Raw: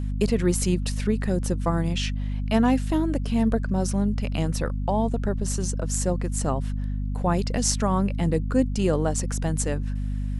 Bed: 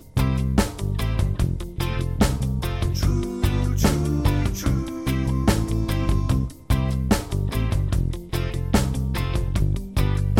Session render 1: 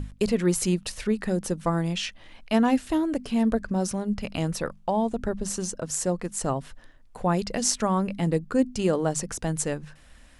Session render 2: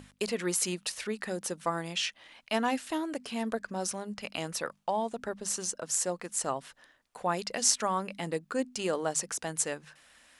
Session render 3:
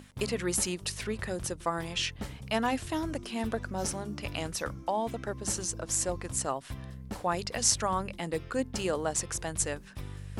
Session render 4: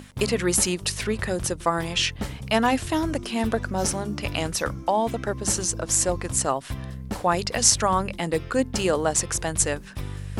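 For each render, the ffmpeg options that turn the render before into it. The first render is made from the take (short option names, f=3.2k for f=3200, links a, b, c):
-af "bandreject=f=50:t=h:w=6,bandreject=f=100:t=h:w=6,bandreject=f=150:t=h:w=6,bandreject=f=200:t=h:w=6,bandreject=f=250:t=h:w=6"
-af "highpass=f=880:p=1"
-filter_complex "[1:a]volume=-20dB[a];[0:a][a]amix=inputs=2:normalize=0"
-af "volume=8dB,alimiter=limit=-2dB:level=0:latency=1"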